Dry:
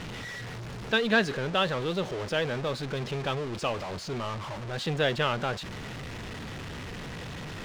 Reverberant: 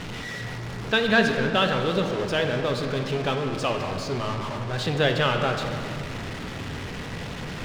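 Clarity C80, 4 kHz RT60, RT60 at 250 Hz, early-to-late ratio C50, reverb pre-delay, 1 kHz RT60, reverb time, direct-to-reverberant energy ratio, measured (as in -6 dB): 6.5 dB, 1.7 s, 4.1 s, 5.5 dB, 3 ms, 2.7 s, 2.9 s, 4.0 dB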